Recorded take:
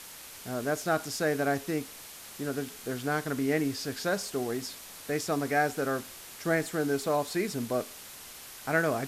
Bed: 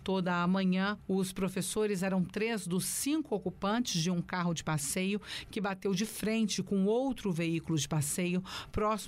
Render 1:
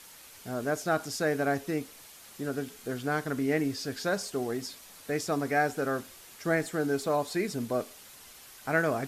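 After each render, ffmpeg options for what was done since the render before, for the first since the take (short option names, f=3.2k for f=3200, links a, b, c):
-af "afftdn=nr=6:nf=-47"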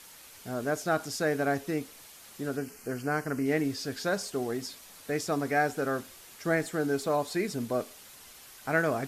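-filter_complex "[0:a]asettb=1/sr,asplit=3[a][b][c];[a]atrim=end=2.574[d];[b]atrim=start=2.57:end=3.46,asetpts=PTS-STARTPTS,afade=t=in:d=0.004:c=qsin,afade=t=out:st=0.886:d=0.004:c=qsin,asuperstop=centerf=3600:order=4:qfactor=2.4[e];[c]atrim=start=3.456[f];[d][e]acrossfade=d=0.004:c1=hsin:c2=qsin[g];[g][f]acrossfade=d=0.004:c1=qsin:c2=hsin"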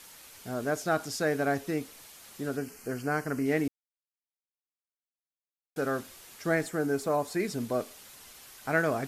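-filter_complex "[0:a]asettb=1/sr,asplit=3[a][b][c];[a]atrim=end=6.684[d];[b]atrim=start=6.68:end=7.4,asetpts=PTS-STARTPTS,afade=t=in:d=0.004:c=qsin,afade=t=out:st=0.716:d=0.004:c=qsin,equalizer=f=3.7k:t=o:w=0.83:g=-7[e];[c]atrim=start=7.396[f];[d][e]acrossfade=d=0.004:c1=hsin:c2=qsin[g];[g][f]acrossfade=d=0.004:c1=qsin:c2=hsin,asplit=3[h][i][j];[h]atrim=end=3.68,asetpts=PTS-STARTPTS,afade=t=out:st=3.676:d=0.004:c=hsin[k];[i]atrim=start=3.68:end=5.76,asetpts=PTS-STARTPTS,volume=0[l];[j]atrim=start=5.76,asetpts=PTS-STARTPTS,afade=t=in:d=0.004:c=hsin[m];[k][l][m]concat=n=3:v=0:a=1"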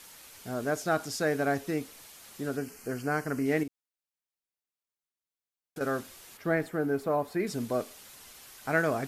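-filter_complex "[0:a]asettb=1/sr,asplit=3[a][b][c];[a]atrim=end=3.634[d];[b]atrim=start=3.63:end=5.81,asetpts=PTS-STARTPTS,afade=t=in:d=0.004:c=qsin,afade=t=out:st=2.176:d=0.004:c=qsin,acompressor=threshold=-35dB:ratio=6:attack=3.2:release=140:knee=1:detection=peak[e];[c]atrim=start=5.806[f];[d][e]acrossfade=d=0.004:c1=hsin:c2=qsin[g];[g][f]acrossfade=d=0.004:c1=qsin:c2=hsin,asettb=1/sr,asplit=3[h][i][j];[h]atrim=end=6.374[k];[i]atrim=start=6.37:end=7.47,asetpts=PTS-STARTPTS,afade=t=in:d=0.004:c=qsin,afade=t=out:st=1.096:d=0.004:c=qsin,equalizer=f=7.1k:t=o:w=1.6:g=-13[l];[j]atrim=start=7.466[m];[k][l]acrossfade=d=0.004:c1=hsin:c2=qsin[n];[n][m]acrossfade=d=0.004:c1=qsin:c2=hsin"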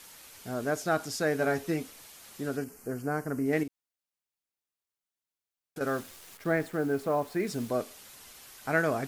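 -filter_complex "[0:a]asettb=1/sr,asplit=3[a][b][c];[a]atrim=end=1.384[d];[b]atrim=start=1.38:end=1.91,asetpts=PTS-STARTPTS,afade=t=in:d=0.004:c=qsin,afade=t=out:st=0.526:d=0.004:c=qsin,asplit=2[e][f];[f]adelay=12,volume=-6.5dB[g];[e][g]amix=inputs=2:normalize=0,atrim=end_sample=23373[h];[c]atrim=start=1.906[i];[d][h]acrossfade=d=0.004:c1=hsin:c2=qsin[j];[j][i]acrossfade=d=0.004:c1=qsin:c2=hsin,asettb=1/sr,asplit=3[k][l][m];[k]atrim=end=2.644[n];[l]atrim=start=2.64:end=3.53,asetpts=PTS-STARTPTS,afade=t=in:d=0.004:c=qsin,afade=t=out:st=0.886:d=0.004:c=qsin,equalizer=f=3.2k:w=0.66:g=-10.5[o];[m]atrim=start=3.526[p];[n][o]acrossfade=d=0.004:c1=hsin:c2=qsin[q];[q][p]acrossfade=d=0.004:c1=qsin:c2=hsin,asettb=1/sr,asplit=3[r][s][t];[r]atrim=end=5.874[u];[s]atrim=start=5.87:end=7.7,asetpts=PTS-STARTPTS,afade=t=in:d=0.004:c=qsin,afade=t=out:st=1.826:d=0.004:c=qsin,acrusher=bits=9:dc=4:mix=0:aa=0.000001[v];[t]atrim=start=7.696[w];[u][v]acrossfade=d=0.004:c1=hsin:c2=qsin[x];[x][w]acrossfade=d=0.004:c1=qsin:c2=hsin"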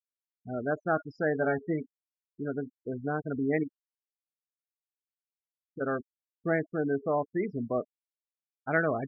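-af "afftfilt=real='re*gte(hypot(re,im),0.0398)':imag='im*gte(hypot(re,im),0.0398)':win_size=1024:overlap=0.75,lowpass=f=3k:w=0.5412,lowpass=f=3k:w=1.3066"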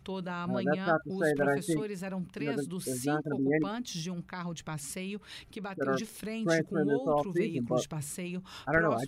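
-filter_complex "[1:a]volume=-5.5dB[a];[0:a][a]amix=inputs=2:normalize=0"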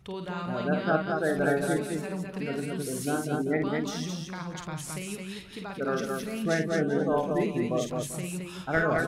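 -af "aecho=1:1:50|198|218|239|391|480:0.501|0.266|0.668|0.119|0.158|0.1"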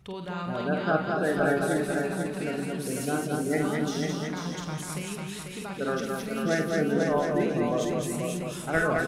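-filter_complex "[0:a]asplit=2[a][b];[b]adelay=46,volume=-13dB[c];[a][c]amix=inputs=2:normalize=0,aecho=1:1:494|988|1482:0.562|0.141|0.0351"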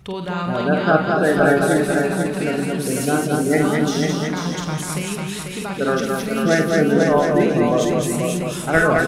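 -af "volume=9.5dB"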